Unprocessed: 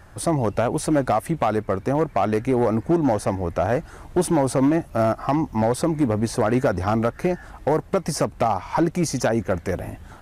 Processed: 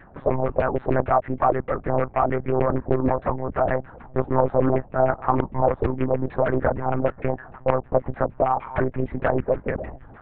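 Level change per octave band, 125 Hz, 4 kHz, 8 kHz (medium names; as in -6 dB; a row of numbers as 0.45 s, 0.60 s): -2.0 dB, under -15 dB, under -40 dB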